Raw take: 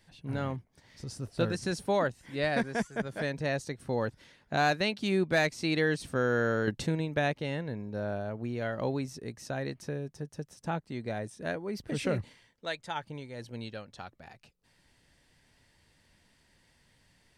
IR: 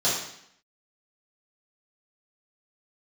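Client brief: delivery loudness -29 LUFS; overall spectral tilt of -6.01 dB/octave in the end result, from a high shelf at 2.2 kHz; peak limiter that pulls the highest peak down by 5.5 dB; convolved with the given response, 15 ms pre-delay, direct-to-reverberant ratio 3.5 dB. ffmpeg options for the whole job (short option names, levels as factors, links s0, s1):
-filter_complex "[0:a]highshelf=f=2200:g=-9,alimiter=limit=0.0944:level=0:latency=1,asplit=2[s0][s1];[1:a]atrim=start_sample=2205,adelay=15[s2];[s1][s2]afir=irnorm=-1:irlink=0,volume=0.15[s3];[s0][s3]amix=inputs=2:normalize=0,volume=1.5"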